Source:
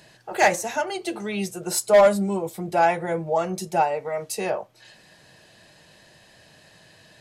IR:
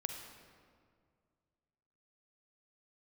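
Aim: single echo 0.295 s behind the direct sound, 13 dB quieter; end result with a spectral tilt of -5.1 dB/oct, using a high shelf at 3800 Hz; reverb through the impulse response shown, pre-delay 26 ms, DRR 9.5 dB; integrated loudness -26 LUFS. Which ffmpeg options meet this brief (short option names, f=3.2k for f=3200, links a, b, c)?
-filter_complex "[0:a]highshelf=f=3.8k:g=-8,aecho=1:1:295:0.224,asplit=2[a][b];[1:a]atrim=start_sample=2205,adelay=26[c];[b][c]afir=irnorm=-1:irlink=0,volume=-9.5dB[d];[a][d]amix=inputs=2:normalize=0,volume=-3dB"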